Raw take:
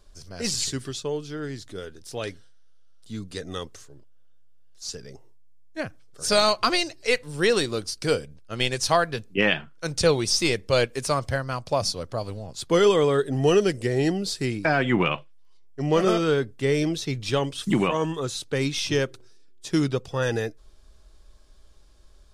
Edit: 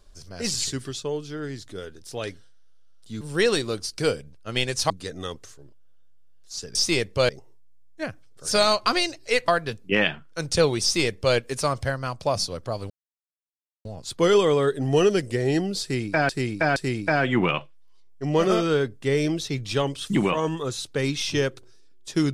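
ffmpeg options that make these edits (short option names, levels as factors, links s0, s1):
-filter_complex "[0:a]asplit=9[s0][s1][s2][s3][s4][s5][s6][s7][s8];[s0]atrim=end=3.212[s9];[s1]atrim=start=7.248:end=8.942[s10];[s2]atrim=start=3.208:end=5.062[s11];[s3]atrim=start=10.278:end=10.822[s12];[s4]atrim=start=5.058:end=7.252[s13];[s5]atrim=start=8.938:end=12.36,asetpts=PTS-STARTPTS,afade=t=out:st=3.418:d=0.004:c=hsin,apad=pad_dur=0.95[s14];[s6]atrim=start=12.36:end=14.802,asetpts=PTS-STARTPTS,afade=t=in:d=0.004:c=hsin[s15];[s7]atrim=start=14.328:end=14.802[s16];[s8]atrim=start=14.328[s17];[s9][s10]acrossfade=d=0.004:c1=hsin:c2=hsin[s18];[s18][s11]acrossfade=d=0.004:c1=hsin:c2=hsin[s19];[s19][s12]acrossfade=d=0.004:c1=hsin:c2=hsin[s20];[s20][s13]acrossfade=d=0.004:c1=hsin:c2=hsin[s21];[s14][s15]concat=n=2:v=0:a=1[s22];[s21][s22]acrossfade=d=0.004:c1=hsin:c2=hsin[s23];[s23][s16]acrossfade=d=0.004:c1=hsin:c2=hsin[s24];[s24][s17]acrossfade=d=0.004:c1=hsin:c2=hsin"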